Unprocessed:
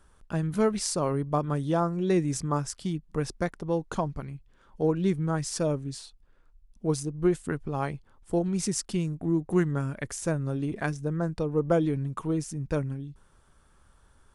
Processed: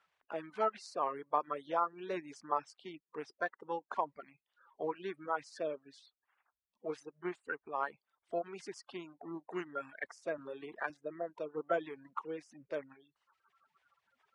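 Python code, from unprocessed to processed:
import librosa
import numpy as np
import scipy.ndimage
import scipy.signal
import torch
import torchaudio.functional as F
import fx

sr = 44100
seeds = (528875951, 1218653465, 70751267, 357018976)

y = fx.spec_quant(x, sr, step_db=30)
y = scipy.signal.sosfilt(scipy.signal.butter(2, 2200.0, 'lowpass', fs=sr, output='sos'), y)
y = fx.dereverb_blind(y, sr, rt60_s=0.91)
y = scipy.signal.sosfilt(scipy.signal.butter(2, 720.0, 'highpass', fs=sr, output='sos'), y)
y = fx.band_squash(y, sr, depth_pct=40, at=(10.38, 10.9))
y = y * librosa.db_to_amplitude(-1.0)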